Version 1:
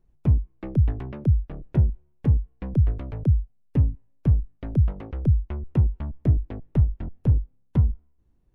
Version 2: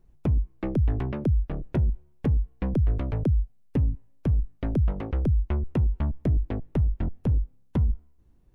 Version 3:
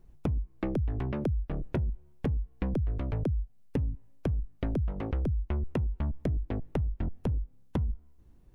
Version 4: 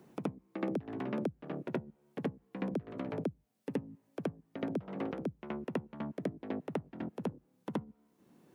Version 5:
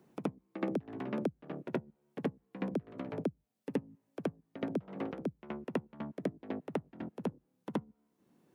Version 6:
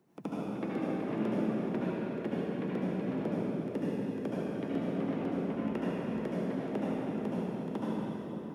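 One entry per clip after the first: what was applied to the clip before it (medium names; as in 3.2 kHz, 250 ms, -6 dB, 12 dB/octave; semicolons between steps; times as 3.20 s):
peak limiter -22 dBFS, peak gain reduction 12 dB; trim +5 dB
compression, threshold -30 dBFS, peak gain reduction 10.5 dB; trim +2.5 dB
high-pass 180 Hz 24 dB/octave; reverse echo 73 ms -8.5 dB; three bands compressed up and down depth 40%; trim -1.5 dB
upward expansion 1.5:1, over -45 dBFS; trim +2 dB
reverberation RT60 4.3 s, pre-delay 67 ms, DRR -9 dB; trim -5.5 dB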